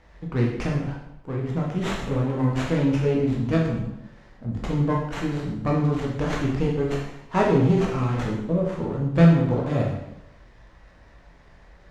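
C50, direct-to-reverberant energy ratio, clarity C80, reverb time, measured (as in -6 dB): 3.0 dB, -3.0 dB, 6.5 dB, 0.85 s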